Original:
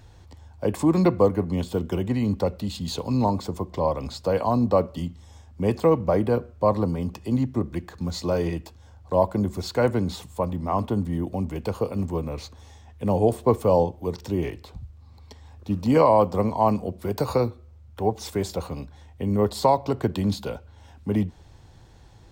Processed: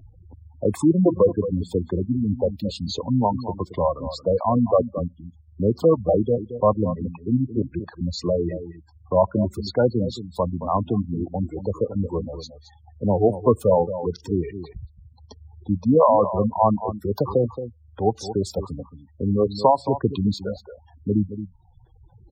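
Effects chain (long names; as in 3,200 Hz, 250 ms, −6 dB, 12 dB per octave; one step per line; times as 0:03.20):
reverb reduction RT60 1.2 s
single-tap delay 223 ms −11.5 dB
gate on every frequency bin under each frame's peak −15 dB strong
level +3 dB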